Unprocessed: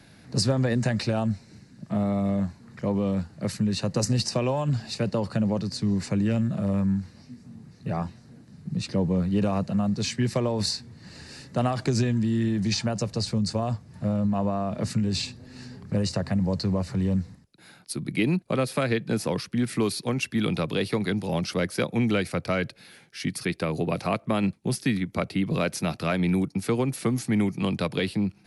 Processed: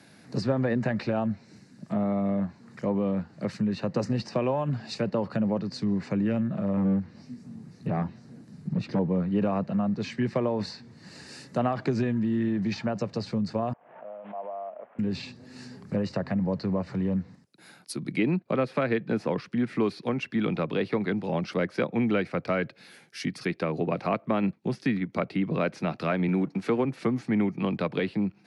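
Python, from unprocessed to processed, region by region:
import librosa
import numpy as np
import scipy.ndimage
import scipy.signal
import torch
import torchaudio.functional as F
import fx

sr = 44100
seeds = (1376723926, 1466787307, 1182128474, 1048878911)

y = fx.chain(x, sr, fx.low_shelf(hz=360.0, db=5.5),
    fx.overload_stage(gain_db=19.0), at=(6.77, 8.99))
y = fx.chain(y, sr, fx.cvsd(bps=16000),
    fx.ladder_bandpass(hz=750.0, resonance_pct=55),
    fx.pre_swell(db_per_s=78.0), at=(13.73, 14.99))
y = fx.chain(y, sr, fx.law_mismatch(coded='mu'),
    fx.highpass(hz=130.0, slope=12),
    fx.peak_eq(hz=4900.0, db=-3.0, octaves=0.2), at=(26.28, 26.85))
y = scipy.signal.sosfilt(scipy.signal.butter(2, 160.0, 'highpass', fs=sr, output='sos'), y)
y = fx.env_lowpass_down(y, sr, base_hz=2500.0, full_db=-25.0)
y = fx.peak_eq(y, sr, hz=3400.0, db=-2.5, octaves=0.77)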